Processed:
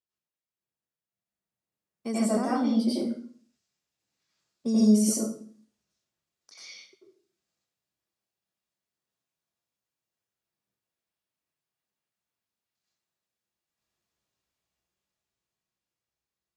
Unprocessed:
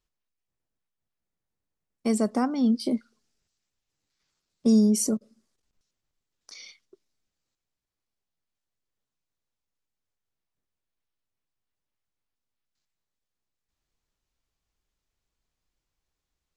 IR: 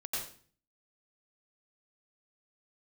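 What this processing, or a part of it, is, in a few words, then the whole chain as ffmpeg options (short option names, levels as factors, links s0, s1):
far laptop microphone: -filter_complex "[1:a]atrim=start_sample=2205[s0];[0:a][s0]afir=irnorm=-1:irlink=0,highpass=110,dynaudnorm=f=200:g=17:m=2.24,volume=0.398"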